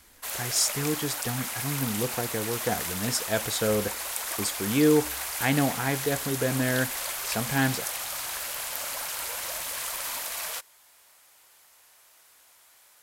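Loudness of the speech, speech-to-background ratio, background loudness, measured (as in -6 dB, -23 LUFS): -28.0 LUFS, 3.0 dB, -31.0 LUFS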